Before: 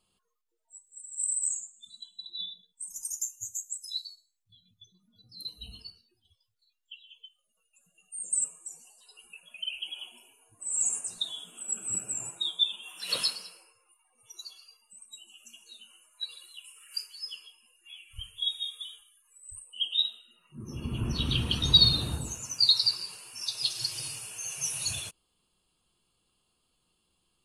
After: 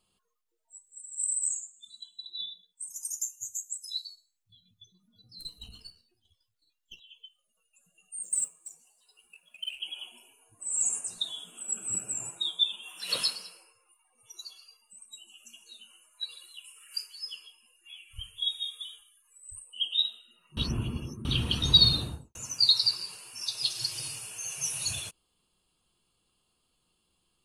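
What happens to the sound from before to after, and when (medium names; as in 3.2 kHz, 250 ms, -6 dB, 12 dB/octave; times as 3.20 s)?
1.00–4.06 s: bass shelf 440 Hz -9 dB
5.39–7.00 s: partial rectifier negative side -7 dB
8.23–9.80 s: companding laws mixed up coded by A
20.57–21.25 s: reverse
21.92–22.35 s: studio fade out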